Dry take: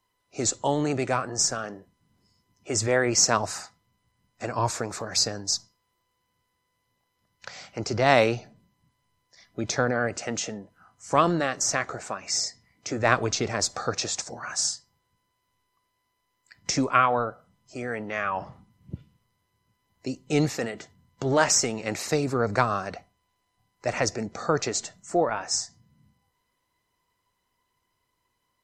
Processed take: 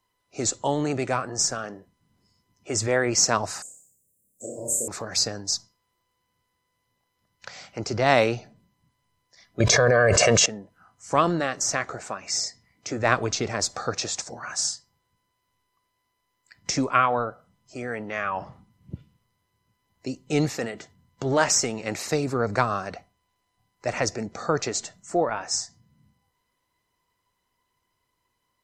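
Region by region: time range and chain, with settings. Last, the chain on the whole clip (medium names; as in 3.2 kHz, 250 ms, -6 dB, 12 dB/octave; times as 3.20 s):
3.62–4.88 s: Chebyshev band-stop 550–7500 Hz, order 4 + RIAA curve recording + flutter echo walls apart 5.2 m, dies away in 0.63 s
9.60–10.46 s: comb 1.8 ms, depth 82% + level flattener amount 100%
whole clip: none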